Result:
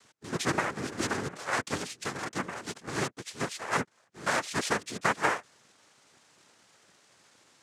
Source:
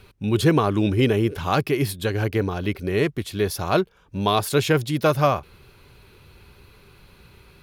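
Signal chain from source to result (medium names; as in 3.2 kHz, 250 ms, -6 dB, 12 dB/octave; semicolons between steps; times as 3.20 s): high-pass 450 Hz 12 dB/octave; noise-vocoded speech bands 3; trim -6.5 dB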